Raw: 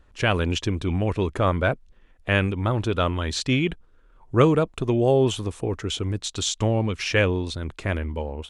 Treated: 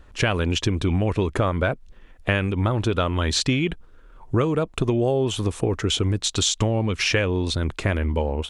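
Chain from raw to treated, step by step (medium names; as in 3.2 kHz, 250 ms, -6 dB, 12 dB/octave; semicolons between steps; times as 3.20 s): compression 12:1, threshold -25 dBFS, peak gain reduction 14 dB; trim +7.5 dB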